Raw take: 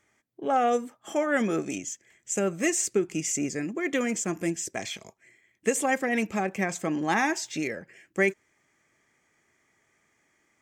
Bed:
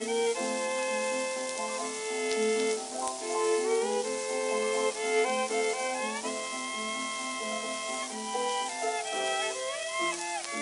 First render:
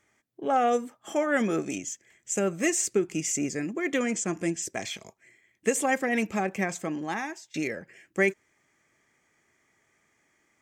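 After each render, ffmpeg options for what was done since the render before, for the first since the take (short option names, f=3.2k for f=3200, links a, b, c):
-filter_complex "[0:a]asettb=1/sr,asplit=3[a][b][c];[a]atrim=end=3.984[d];[b]atrim=start=3.98:end=4.62,asetpts=PTS-STARTPTS,afade=t=in:d=0.004:c=qsin,afade=t=out:st=0.636:d=0.004:c=qsin,lowpass=f=9.9k:w=0.5412,lowpass=f=9.9k:w=1.3066[e];[c]atrim=start=4.616[f];[d][e]acrossfade=d=0.004:c1=hsin:c2=qsin[g];[g][f]acrossfade=d=0.004:c1=qsin:c2=hsin,asplit=2[h][i];[h]atrim=end=7.54,asetpts=PTS-STARTPTS,afade=t=out:st=6.57:d=0.97:silence=0.0794328[j];[i]atrim=start=7.54,asetpts=PTS-STARTPTS,afade=t=in:d=0.004:c=hsin:silence=0.0794328[k];[j][k]concat=n=2:v=0:a=1"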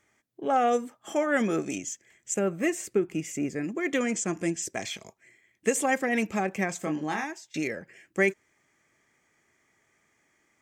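-filter_complex "[0:a]asettb=1/sr,asplit=3[a][b][c];[a]atrim=end=2.344[d];[b]atrim=start=2.34:end=3.64,asetpts=PTS-STARTPTS,afade=t=in:d=0.004:c=qsin,afade=t=out:st=1.296:d=0.004:c=qsin,equalizer=f=6.3k:w=0.73:g=-11.5[e];[c]atrim=start=3.636[f];[d][e]acrossfade=d=0.004:c1=hsin:c2=qsin[g];[g][f]acrossfade=d=0.004:c1=qsin:c2=hsin,asettb=1/sr,asplit=3[h][i][j];[h]atrim=end=6.784[k];[i]atrim=start=6.78:end=7.24,asetpts=PTS-STARTPTS,afade=t=in:d=0.004:c=qsin,afade=t=out:st=0.456:d=0.004:c=qsin,asplit=2[l][m];[m]adelay=26,volume=-5.5dB[n];[l][n]amix=inputs=2:normalize=0,atrim=end_sample=20286[o];[j]atrim=start=7.236[p];[k][o]acrossfade=d=0.004:c1=hsin:c2=qsin[q];[q][p]acrossfade=d=0.004:c1=qsin:c2=hsin"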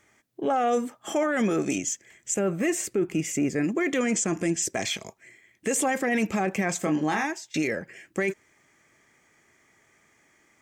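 -af "acontrast=63,alimiter=limit=-17dB:level=0:latency=1:release=14"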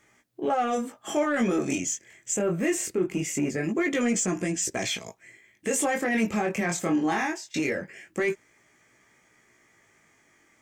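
-filter_complex "[0:a]flanger=delay=16:depth=7.6:speed=0.22,asplit=2[a][b];[b]asoftclip=type=tanh:threshold=-26dB,volume=-6dB[c];[a][c]amix=inputs=2:normalize=0"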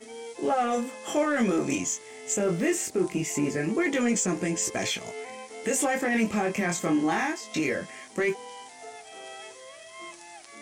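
-filter_complex "[1:a]volume=-12dB[a];[0:a][a]amix=inputs=2:normalize=0"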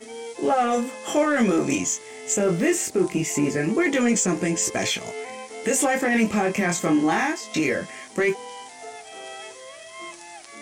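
-af "volume=4.5dB"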